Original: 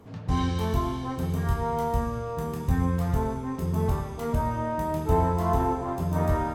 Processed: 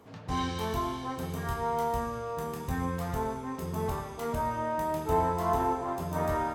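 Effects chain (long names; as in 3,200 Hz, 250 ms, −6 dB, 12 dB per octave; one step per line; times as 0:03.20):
low-shelf EQ 250 Hz −11.5 dB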